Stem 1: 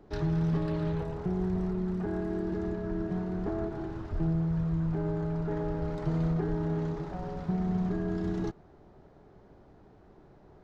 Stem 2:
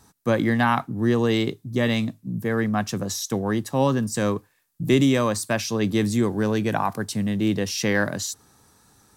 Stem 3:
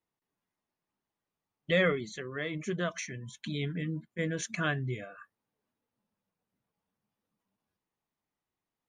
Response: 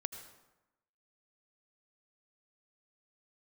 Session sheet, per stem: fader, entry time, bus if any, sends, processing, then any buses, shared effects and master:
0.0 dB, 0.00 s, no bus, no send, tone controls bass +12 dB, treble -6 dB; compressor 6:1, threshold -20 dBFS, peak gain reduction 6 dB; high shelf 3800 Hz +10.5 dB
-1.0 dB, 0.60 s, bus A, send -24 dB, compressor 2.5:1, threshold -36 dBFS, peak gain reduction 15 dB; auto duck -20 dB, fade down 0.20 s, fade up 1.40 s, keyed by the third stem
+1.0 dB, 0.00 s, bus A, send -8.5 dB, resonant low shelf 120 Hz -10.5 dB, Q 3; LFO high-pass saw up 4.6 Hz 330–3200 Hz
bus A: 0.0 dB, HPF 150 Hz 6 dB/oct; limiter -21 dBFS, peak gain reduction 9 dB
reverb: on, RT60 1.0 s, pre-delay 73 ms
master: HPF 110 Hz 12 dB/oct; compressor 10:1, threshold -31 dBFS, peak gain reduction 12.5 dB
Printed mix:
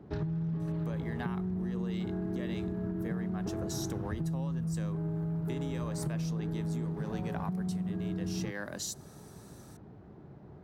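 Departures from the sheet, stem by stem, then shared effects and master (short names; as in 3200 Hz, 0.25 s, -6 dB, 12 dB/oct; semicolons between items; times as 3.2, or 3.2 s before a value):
stem 1: missing high shelf 3800 Hz +10.5 dB; stem 3: muted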